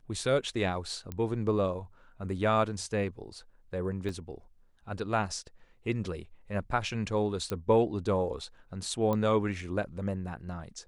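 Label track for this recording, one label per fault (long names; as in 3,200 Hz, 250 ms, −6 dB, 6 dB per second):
1.120000	1.120000	click −23 dBFS
4.090000	4.090000	drop-out 2.6 ms
7.500000	7.500000	click −18 dBFS
9.130000	9.130000	click −19 dBFS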